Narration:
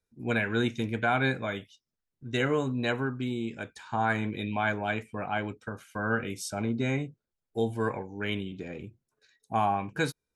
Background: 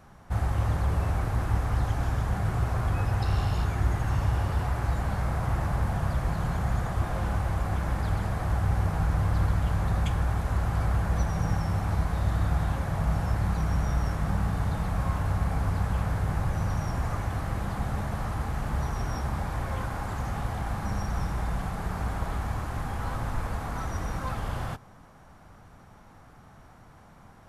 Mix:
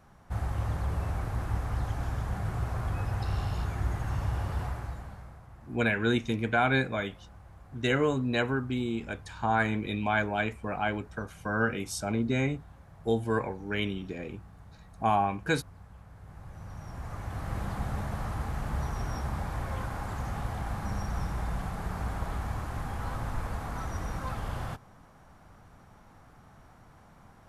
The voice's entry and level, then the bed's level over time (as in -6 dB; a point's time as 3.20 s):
5.50 s, +1.0 dB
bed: 4.65 s -5 dB
5.47 s -23.5 dB
16.08 s -23.5 dB
17.57 s -3 dB